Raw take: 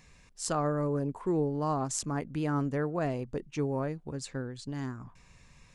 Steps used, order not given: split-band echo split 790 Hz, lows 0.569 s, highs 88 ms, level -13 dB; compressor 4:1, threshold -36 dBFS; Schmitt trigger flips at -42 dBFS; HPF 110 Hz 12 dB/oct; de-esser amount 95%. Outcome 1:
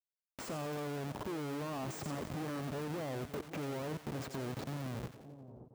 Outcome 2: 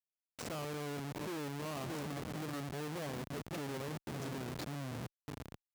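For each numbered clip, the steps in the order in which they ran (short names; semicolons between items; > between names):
Schmitt trigger > HPF > compressor > split-band echo > de-esser; de-esser > split-band echo > compressor > Schmitt trigger > HPF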